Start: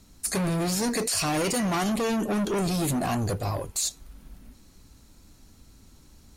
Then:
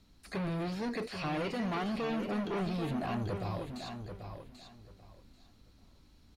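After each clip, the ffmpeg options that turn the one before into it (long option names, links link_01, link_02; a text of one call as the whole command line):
ffmpeg -i in.wav -filter_complex "[0:a]highshelf=frequency=5500:width_type=q:width=1.5:gain=-8.5,acrossover=split=3500[link_01][link_02];[link_02]acompressor=threshold=-49dB:ratio=4:attack=1:release=60[link_03];[link_01][link_03]amix=inputs=2:normalize=0,aecho=1:1:788|1576|2364:0.398|0.0836|0.0176,volume=-8.5dB" out.wav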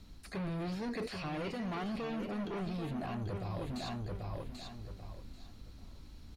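ffmpeg -i in.wav -af "lowshelf=frequency=110:gain=6.5,areverse,acompressor=threshold=-42dB:ratio=6,areverse,volume=5.5dB" out.wav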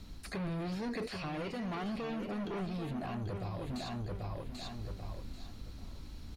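ffmpeg -i in.wav -af "alimiter=level_in=12.5dB:limit=-24dB:level=0:latency=1:release=252,volume=-12.5dB,volume=5dB" out.wav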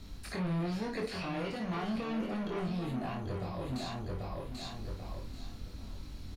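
ffmpeg -i in.wav -af "aecho=1:1:23|54:0.708|0.422" out.wav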